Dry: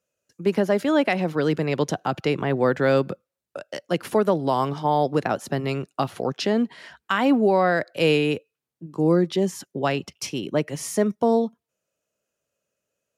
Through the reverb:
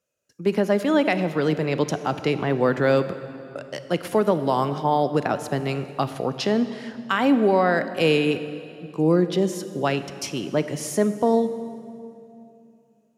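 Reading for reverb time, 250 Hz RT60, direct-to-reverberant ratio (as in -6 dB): 2.7 s, 3.3 s, 11.0 dB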